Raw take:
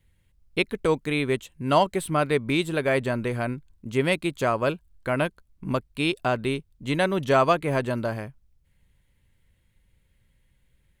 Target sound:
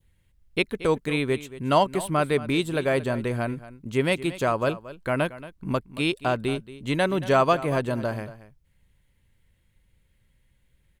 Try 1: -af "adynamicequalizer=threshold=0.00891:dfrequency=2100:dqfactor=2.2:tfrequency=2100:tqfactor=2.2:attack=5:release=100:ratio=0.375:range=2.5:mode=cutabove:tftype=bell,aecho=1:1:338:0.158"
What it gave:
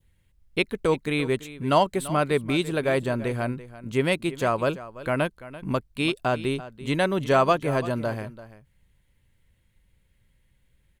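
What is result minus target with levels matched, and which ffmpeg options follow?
echo 110 ms late
-af "adynamicequalizer=threshold=0.00891:dfrequency=2100:dqfactor=2.2:tfrequency=2100:tqfactor=2.2:attack=5:release=100:ratio=0.375:range=2.5:mode=cutabove:tftype=bell,aecho=1:1:228:0.158"

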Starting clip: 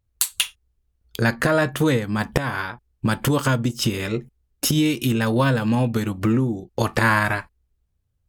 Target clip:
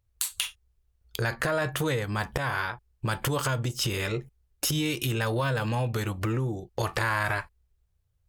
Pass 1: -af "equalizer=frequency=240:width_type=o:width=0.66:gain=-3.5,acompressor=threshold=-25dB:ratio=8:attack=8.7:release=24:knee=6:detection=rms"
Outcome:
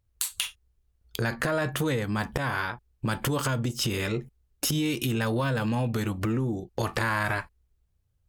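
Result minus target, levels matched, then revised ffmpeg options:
250 Hz band +3.5 dB
-af "equalizer=frequency=240:width_type=o:width=0.66:gain=-13.5,acompressor=threshold=-25dB:ratio=8:attack=8.7:release=24:knee=6:detection=rms"

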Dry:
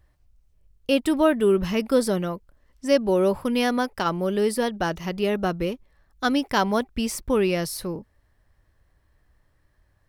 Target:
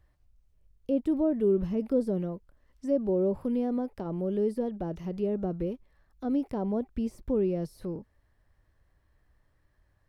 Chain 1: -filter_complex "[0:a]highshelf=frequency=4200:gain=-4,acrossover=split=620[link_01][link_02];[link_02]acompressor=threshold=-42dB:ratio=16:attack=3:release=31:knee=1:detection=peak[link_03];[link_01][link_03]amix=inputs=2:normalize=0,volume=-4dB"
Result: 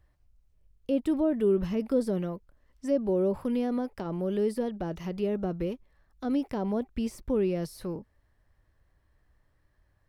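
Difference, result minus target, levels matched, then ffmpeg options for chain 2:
downward compressor: peak gain reduction −9.5 dB
-filter_complex "[0:a]highshelf=frequency=4200:gain=-4,acrossover=split=620[link_01][link_02];[link_02]acompressor=threshold=-52dB:ratio=16:attack=3:release=31:knee=1:detection=peak[link_03];[link_01][link_03]amix=inputs=2:normalize=0,volume=-4dB"

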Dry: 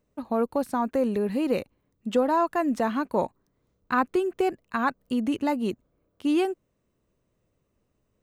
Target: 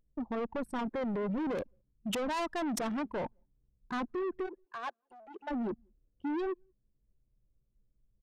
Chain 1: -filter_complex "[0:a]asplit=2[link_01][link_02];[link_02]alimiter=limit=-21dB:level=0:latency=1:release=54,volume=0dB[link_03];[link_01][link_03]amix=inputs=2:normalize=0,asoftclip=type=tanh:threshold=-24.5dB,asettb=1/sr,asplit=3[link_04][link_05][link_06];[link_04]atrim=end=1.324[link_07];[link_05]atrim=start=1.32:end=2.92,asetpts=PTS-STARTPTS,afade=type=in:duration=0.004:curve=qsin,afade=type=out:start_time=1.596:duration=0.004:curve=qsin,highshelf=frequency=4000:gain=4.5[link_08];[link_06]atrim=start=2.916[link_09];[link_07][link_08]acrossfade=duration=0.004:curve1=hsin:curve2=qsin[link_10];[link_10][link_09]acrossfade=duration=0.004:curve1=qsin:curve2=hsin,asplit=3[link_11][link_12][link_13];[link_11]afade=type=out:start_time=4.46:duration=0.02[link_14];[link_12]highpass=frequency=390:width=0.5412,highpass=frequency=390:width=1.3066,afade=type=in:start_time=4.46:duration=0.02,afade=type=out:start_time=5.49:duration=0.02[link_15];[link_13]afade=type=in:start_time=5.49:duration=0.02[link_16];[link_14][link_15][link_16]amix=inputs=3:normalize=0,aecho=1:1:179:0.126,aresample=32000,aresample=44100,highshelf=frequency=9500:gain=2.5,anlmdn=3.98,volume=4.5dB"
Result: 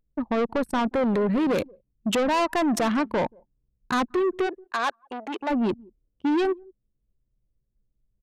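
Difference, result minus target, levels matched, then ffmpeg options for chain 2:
soft clipping: distortion −5 dB
-filter_complex "[0:a]asplit=2[link_01][link_02];[link_02]alimiter=limit=-21dB:level=0:latency=1:release=54,volume=0dB[link_03];[link_01][link_03]amix=inputs=2:normalize=0,asoftclip=type=tanh:threshold=-36dB,asettb=1/sr,asplit=3[link_04][link_05][link_06];[link_04]atrim=end=1.324[link_07];[link_05]atrim=start=1.32:end=2.92,asetpts=PTS-STARTPTS,afade=type=in:duration=0.004:curve=qsin,afade=type=out:start_time=1.596:duration=0.004:curve=qsin,highshelf=frequency=4000:gain=4.5[link_08];[link_06]atrim=start=2.916[link_09];[link_07][link_08]acrossfade=duration=0.004:curve1=hsin:curve2=qsin[link_10];[link_10][link_09]acrossfade=duration=0.004:curve1=qsin:curve2=hsin,asplit=3[link_11][link_12][link_13];[link_11]afade=type=out:start_time=4.46:duration=0.02[link_14];[link_12]highpass=frequency=390:width=0.5412,highpass=frequency=390:width=1.3066,afade=type=in:start_time=4.46:duration=0.02,afade=type=out:start_time=5.49:duration=0.02[link_15];[link_13]afade=type=in:start_time=5.49:duration=0.02[link_16];[link_14][link_15][link_16]amix=inputs=3:normalize=0,aecho=1:1:179:0.126,aresample=32000,aresample=44100,highshelf=frequency=9500:gain=2.5,anlmdn=3.98,volume=4.5dB"

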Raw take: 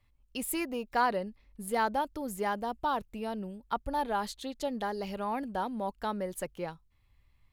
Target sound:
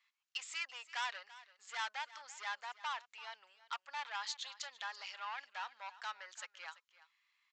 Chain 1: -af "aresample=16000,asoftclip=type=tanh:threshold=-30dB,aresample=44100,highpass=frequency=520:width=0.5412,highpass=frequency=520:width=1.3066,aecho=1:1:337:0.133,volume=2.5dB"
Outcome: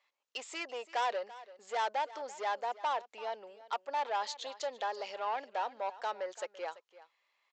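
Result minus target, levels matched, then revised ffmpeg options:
500 Hz band +16.5 dB
-af "aresample=16000,asoftclip=type=tanh:threshold=-30dB,aresample=44100,highpass=frequency=1200:width=0.5412,highpass=frequency=1200:width=1.3066,aecho=1:1:337:0.133,volume=2.5dB"

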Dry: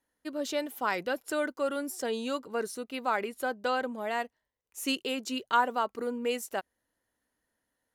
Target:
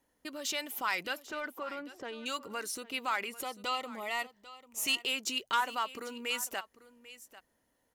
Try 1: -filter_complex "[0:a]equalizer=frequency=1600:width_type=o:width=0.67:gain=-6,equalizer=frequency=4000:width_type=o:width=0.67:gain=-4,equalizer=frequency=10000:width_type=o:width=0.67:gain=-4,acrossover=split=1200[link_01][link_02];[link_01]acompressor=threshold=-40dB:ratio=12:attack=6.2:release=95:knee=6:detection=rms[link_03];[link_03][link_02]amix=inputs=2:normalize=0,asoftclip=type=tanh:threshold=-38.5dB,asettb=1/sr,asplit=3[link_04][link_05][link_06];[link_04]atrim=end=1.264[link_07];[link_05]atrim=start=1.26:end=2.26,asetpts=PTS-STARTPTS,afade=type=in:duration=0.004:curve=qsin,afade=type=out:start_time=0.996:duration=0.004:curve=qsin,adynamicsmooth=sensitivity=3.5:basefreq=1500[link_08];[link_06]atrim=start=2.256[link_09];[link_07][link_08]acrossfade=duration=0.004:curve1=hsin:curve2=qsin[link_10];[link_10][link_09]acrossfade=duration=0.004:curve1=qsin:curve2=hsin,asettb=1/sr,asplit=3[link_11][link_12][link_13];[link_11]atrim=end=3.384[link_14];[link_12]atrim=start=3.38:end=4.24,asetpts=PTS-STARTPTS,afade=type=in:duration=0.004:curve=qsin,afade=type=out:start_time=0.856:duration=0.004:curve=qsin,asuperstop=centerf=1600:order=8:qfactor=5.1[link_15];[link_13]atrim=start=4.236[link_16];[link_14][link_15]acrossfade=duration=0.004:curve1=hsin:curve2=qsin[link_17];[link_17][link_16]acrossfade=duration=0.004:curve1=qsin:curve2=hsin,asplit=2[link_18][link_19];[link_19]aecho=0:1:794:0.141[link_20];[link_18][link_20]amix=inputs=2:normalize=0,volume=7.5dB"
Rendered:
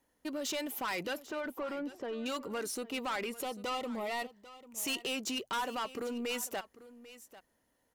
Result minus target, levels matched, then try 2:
downward compressor: peak gain reduction −8.5 dB; soft clipping: distortion +9 dB
-filter_complex "[0:a]equalizer=frequency=1600:width_type=o:width=0.67:gain=-6,equalizer=frequency=4000:width_type=o:width=0.67:gain=-4,equalizer=frequency=10000:width_type=o:width=0.67:gain=-4,acrossover=split=1200[link_01][link_02];[link_01]acompressor=threshold=-49.5dB:ratio=12:attack=6.2:release=95:knee=6:detection=rms[link_03];[link_03][link_02]amix=inputs=2:normalize=0,asoftclip=type=tanh:threshold=-28.5dB,asettb=1/sr,asplit=3[link_04][link_05][link_06];[link_04]atrim=end=1.264[link_07];[link_05]atrim=start=1.26:end=2.26,asetpts=PTS-STARTPTS,afade=type=in:duration=0.004:curve=qsin,afade=type=out:start_time=0.996:duration=0.004:curve=qsin,adynamicsmooth=sensitivity=3.5:basefreq=1500[link_08];[link_06]atrim=start=2.256[link_09];[link_07][link_08]acrossfade=duration=0.004:curve1=hsin:curve2=qsin[link_10];[link_10][link_09]acrossfade=duration=0.004:curve1=qsin:curve2=hsin,asettb=1/sr,asplit=3[link_11][link_12][link_13];[link_11]atrim=end=3.384[link_14];[link_12]atrim=start=3.38:end=4.24,asetpts=PTS-STARTPTS,afade=type=in:duration=0.004:curve=qsin,afade=type=out:start_time=0.856:duration=0.004:curve=qsin,asuperstop=centerf=1600:order=8:qfactor=5.1[link_15];[link_13]atrim=start=4.236[link_16];[link_14][link_15]acrossfade=duration=0.004:curve1=hsin:curve2=qsin[link_17];[link_17][link_16]acrossfade=duration=0.004:curve1=qsin:curve2=hsin,asplit=2[link_18][link_19];[link_19]aecho=0:1:794:0.141[link_20];[link_18][link_20]amix=inputs=2:normalize=0,volume=7.5dB"

